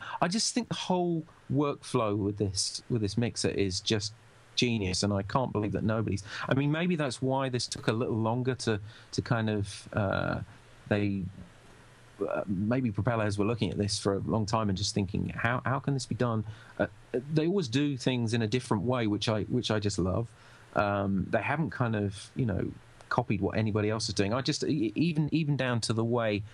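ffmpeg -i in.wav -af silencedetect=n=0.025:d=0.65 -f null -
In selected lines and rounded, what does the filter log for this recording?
silence_start: 11.27
silence_end: 12.21 | silence_duration: 0.94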